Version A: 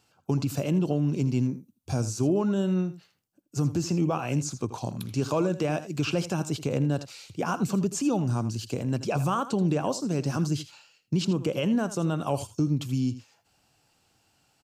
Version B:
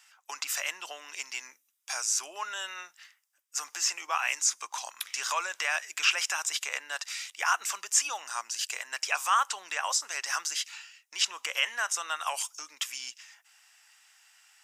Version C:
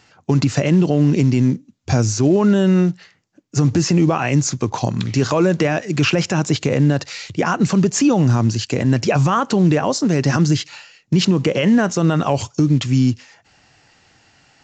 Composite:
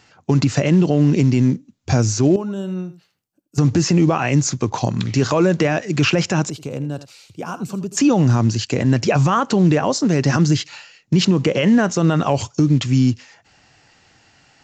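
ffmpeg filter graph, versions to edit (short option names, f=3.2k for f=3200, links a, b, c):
-filter_complex "[0:a]asplit=2[a][b];[2:a]asplit=3[c][d][e];[c]atrim=end=2.362[f];[a]atrim=start=2.358:end=3.582[g];[d]atrim=start=3.578:end=6.502[h];[b]atrim=start=6.498:end=7.972[i];[e]atrim=start=7.968[j];[f][g]acrossfade=d=0.004:c1=hsin:c2=hsin[k];[k][h]acrossfade=d=0.004:c1=hsin:c2=hsin[l];[l][i]acrossfade=d=0.004:c1=hsin:c2=hsin[m];[m][j]acrossfade=d=0.004:c1=hsin:c2=hsin"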